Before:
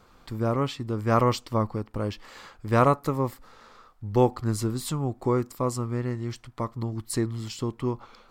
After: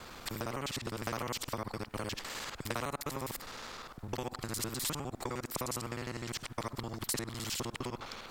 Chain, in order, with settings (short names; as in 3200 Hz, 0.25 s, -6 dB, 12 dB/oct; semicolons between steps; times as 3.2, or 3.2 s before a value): local time reversal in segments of 51 ms; compressor, threshold -29 dBFS, peak gain reduction 13.5 dB; spectral compressor 2:1